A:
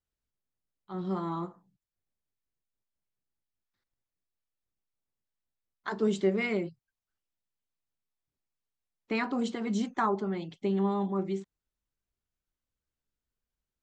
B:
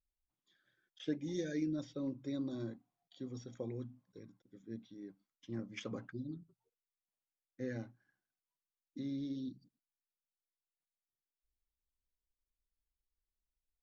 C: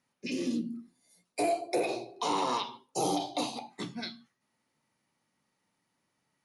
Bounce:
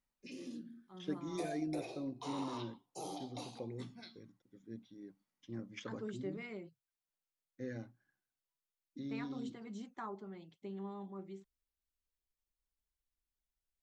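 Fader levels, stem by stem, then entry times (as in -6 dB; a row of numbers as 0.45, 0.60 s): -16.5, -2.5, -15.0 dB; 0.00, 0.00, 0.00 s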